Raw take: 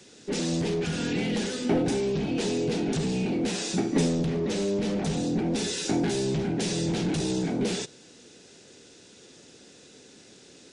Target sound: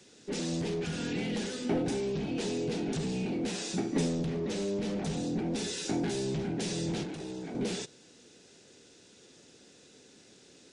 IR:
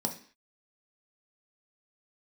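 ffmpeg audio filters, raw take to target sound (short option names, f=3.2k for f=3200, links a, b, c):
-filter_complex "[0:a]asettb=1/sr,asplit=3[a][b][c];[a]atrim=end=7.034[d];[b]atrim=start=7.03:end=7.55,asetpts=PTS-STARTPTS,afade=t=in:d=0.004:c=qsin,afade=t=out:st=0.516:d=0.004:c=qsin,acrossover=split=270|2900[e][f][g];[e]acompressor=threshold=-41dB:ratio=4[h];[f]acompressor=threshold=-34dB:ratio=4[i];[g]acompressor=threshold=-50dB:ratio=4[j];[h][i][j]amix=inputs=3:normalize=0[k];[c]atrim=start=7.546[l];[d][k]acrossfade=d=0.004:c1=hsin:c2=qsin[m];[m][l]acrossfade=d=0.004:c1=qsin:c2=hsin,volume=-5.5dB"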